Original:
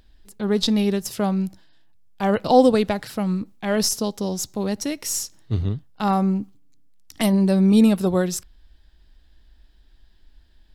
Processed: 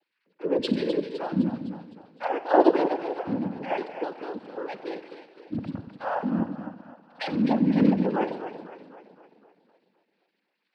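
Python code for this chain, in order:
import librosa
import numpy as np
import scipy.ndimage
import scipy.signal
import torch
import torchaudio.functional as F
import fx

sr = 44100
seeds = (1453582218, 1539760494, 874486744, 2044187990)

y = fx.sine_speech(x, sr)
y = fx.harmonic_tremolo(y, sr, hz=2.0, depth_pct=50, crossover_hz=640.0)
y = fx.echo_split(y, sr, split_hz=330.0, low_ms=82, high_ms=255, feedback_pct=52, wet_db=-9.5)
y = fx.rev_schroeder(y, sr, rt60_s=1.2, comb_ms=32, drr_db=11.0)
y = fx.noise_vocoder(y, sr, seeds[0], bands=8)
y = F.gain(torch.from_numpy(y), -3.0).numpy()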